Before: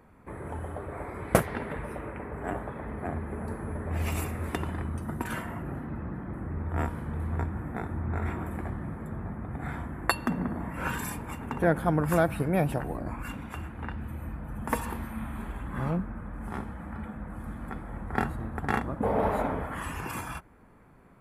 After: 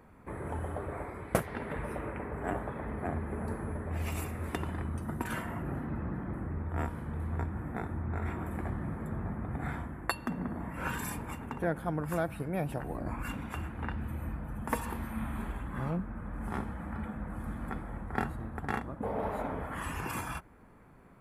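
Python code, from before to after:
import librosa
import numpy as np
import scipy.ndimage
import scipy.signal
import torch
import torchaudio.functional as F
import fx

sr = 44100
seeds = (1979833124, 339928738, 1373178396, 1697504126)

y = fx.rider(x, sr, range_db=4, speed_s=0.5)
y = y * 10.0 ** (-4.0 / 20.0)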